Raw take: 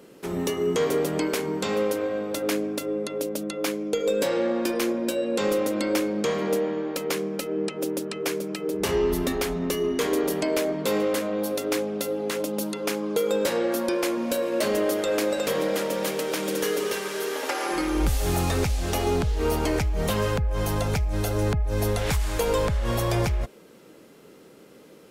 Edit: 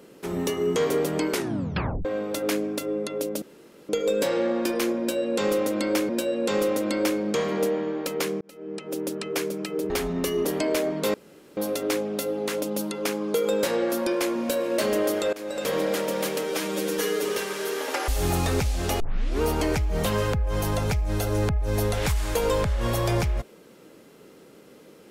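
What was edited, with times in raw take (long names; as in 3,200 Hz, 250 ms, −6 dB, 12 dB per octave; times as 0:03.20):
0:01.31: tape stop 0.74 s
0:03.42–0:03.89: fill with room tone
0:04.99–0:06.09: repeat, 2 plays
0:07.31–0:08.04: fade in
0:08.80–0:09.36: remove
0:09.91–0:10.27: remove
0:10.96–0:11.39: fill with room tone
0:15.15–0:15.56: fade in, from −20.5 dB
0:16.25–0:16.79: time-stretch 1.5×
0:17.63–0:18.12: remove
0:19.04: tape start 0.41 s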